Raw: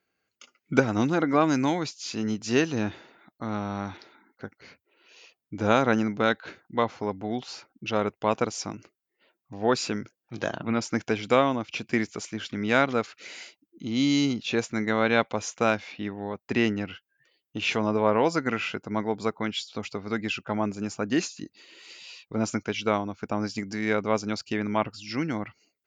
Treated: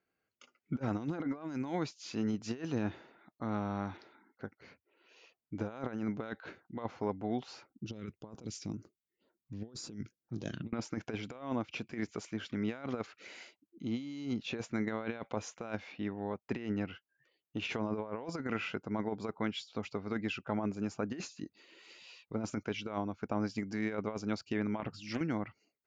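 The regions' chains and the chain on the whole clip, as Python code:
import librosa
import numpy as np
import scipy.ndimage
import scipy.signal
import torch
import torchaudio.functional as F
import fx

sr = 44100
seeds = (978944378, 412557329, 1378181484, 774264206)

y = fx.chain(x, sr, fx.peak_eq(hz=670.0, db=-8.5, octaves=1.4),
    fx.phaser_stages(stages=2, low_hz=770.0, high_hz=2600.0, hz=2.0, feedback_pct=20),
    fx.over_compress(threshold_db=-36.0, ratio=-0.5), at=(7.69, 10.73))
y = fx.chain(y, sr, fx.over_compress(threshold_db=-29.0, ratio=-0.5),
    fx.hum_notches(base_hz=50, count=3),
    fx.doppler_dist(depth_ms=0.33), at=(24.8, 25.21))
y = fx.over_compress(y, sr, threshold_db=-27.0, ratio=-0.5)
y = fx.high_shelf(y, sr, hz=2800.0, db=-9.5)
y = y * 10.0 ** (-7.0 / 20.0)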